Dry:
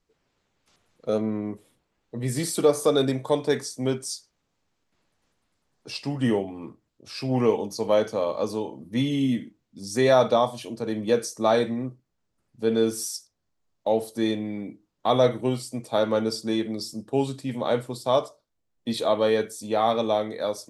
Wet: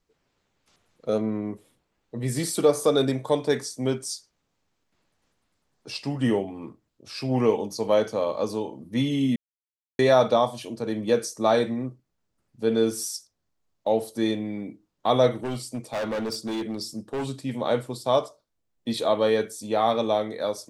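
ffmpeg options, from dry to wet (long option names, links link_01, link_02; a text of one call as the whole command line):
ffmpeg -i in.wav -filter_complex "[0:a]asettb=1/sr,asplit=3[link_01][link_02][link_03];[link_01]atrim=end=15.344[link_04];[link_02]atrim=start=15.34:end=17.26,asetpts=PTS-STARTPTS,afade=type=in:duration=0.004:curve=qsin,afade=type=out:start_time=1.916:duration=0.004:curve=qsin,volume=25.5dB,asoftclip=hard,volume=-25.5dB[link_05];[link_03]atrim=start=17.256[link_06];[link_04][link_05]acrossfade=duration=0.004:curve1=hsin:curve2=qsin[link_07];[link_07][link_06]acrossfade=duration=0.004:curve1=qsin:curve2=hsin,asplit=3[link_08][link_09][link_10];[link_08]atrim=end=9.36,asetpts=PTS-STARTPTS,afade=type=out:start_time=9.356:duration=0.004:curve=hsin[link_11];[link_09]atrim=start=9.36:end=9.99,asetpts=PTS-STARTPTS,volume=0[link_12];[link_10]atrim=start=9.99,asetpts=PTS-STARTPTS,afade=type=in:duration=0.004:curve=hsin[link_13];[link_11][link_12][link_13]concat=n=3:v=0:a=1" out.wav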